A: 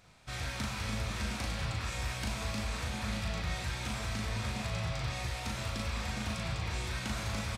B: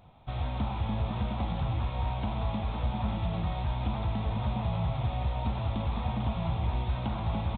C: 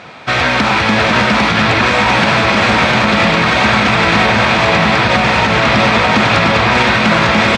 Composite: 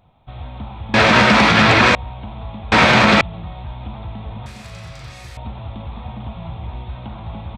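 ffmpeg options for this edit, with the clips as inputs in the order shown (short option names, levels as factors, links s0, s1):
-filter_complex "[2:a]asplit=2[s0][s1];[1:a]asplit=4[s2][s3][s4][s5];[s2]atrim=end=0.942[s6];[s0]atrim=start=0.938:end=1.952[s7];[s3]atrim=start=1.948:end=2.722[s8];[s1]atrim=start=2.718:end=3.212[s9];[s4]atrim=start=3.208:end=4.462[s10];[0:a]atrim=start=4.458:end=5.372[s11];[s5]atrim=start=5.368[s12];[s6][s7]acrossfade=d=0.004:c1=hsin:c2=hsin[s13];[s13][s8]acrossfade=d=0.004:c1=hsin:c2=hsin[s14];[s14][s9]acrossfade=d=0.004:c1=hsin:c2=hsin[s15];[s15][s10]acrossfade=d=0.004:c1=hsin:c2=hsin[s16];[s16][s11]acrossfade=d=0.004:c1=hsin:c2=hsin[s17];[s17][s12]acrossfade=d=0.004:c1=hsin:c2=hsin"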